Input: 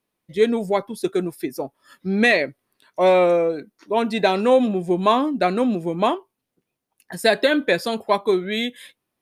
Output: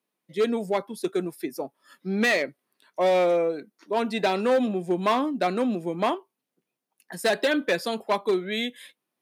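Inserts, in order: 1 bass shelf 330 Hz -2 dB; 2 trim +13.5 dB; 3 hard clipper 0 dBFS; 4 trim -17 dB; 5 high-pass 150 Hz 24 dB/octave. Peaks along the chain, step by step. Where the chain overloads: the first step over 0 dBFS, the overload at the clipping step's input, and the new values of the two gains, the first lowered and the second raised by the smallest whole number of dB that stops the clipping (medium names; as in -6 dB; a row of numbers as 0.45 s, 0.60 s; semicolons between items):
-4.5 dBFS, +9.0 dBFS, 0.0 dBFS, -17.0 dBFS, -11.0 dBFS; step 2, 9.0 dB; step 2 +4.5 dB, step 4 -8 dB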